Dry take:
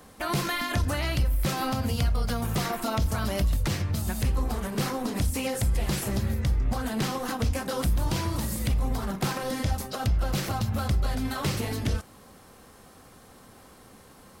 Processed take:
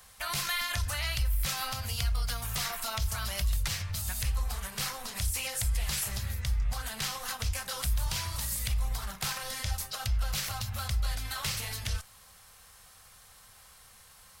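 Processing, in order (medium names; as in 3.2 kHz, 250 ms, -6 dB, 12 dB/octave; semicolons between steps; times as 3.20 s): amplifier tone stack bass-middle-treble 10-0-10; trim +3 dB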